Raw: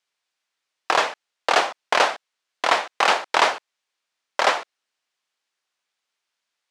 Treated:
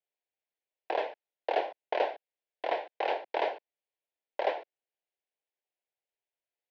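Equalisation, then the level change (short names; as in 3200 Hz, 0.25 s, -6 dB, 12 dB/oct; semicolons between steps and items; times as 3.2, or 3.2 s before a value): three-band isolator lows -18 dB, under 190 Hz, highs -19 dB, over 5000 Hz; tape spacing loss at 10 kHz 39 dB; fixed phaser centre 510 Hz, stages 4; -3.0 dB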